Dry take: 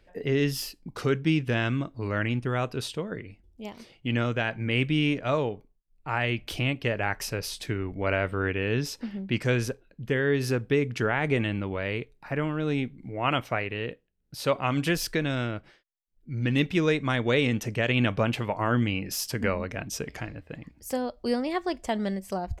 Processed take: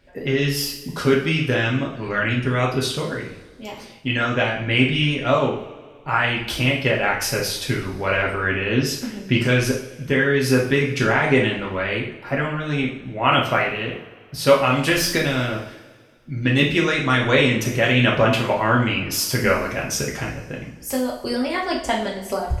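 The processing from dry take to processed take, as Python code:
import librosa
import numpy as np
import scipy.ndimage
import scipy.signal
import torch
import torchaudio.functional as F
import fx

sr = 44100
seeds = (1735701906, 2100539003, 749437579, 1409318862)

y = fx.hpss(x, sr, part='percussive', gain_db=8)
y = fx.vibrato(y, sr, rate_hz=2.2, depth_cents=6.2)
y = fx.rev_double_slope(y, sr, seeds[0], early_s=0.55, late_s=2.0, knee_db=-18, drr_db=-3.0)
y = y * 10.0 ** (-1.5 / 20.0)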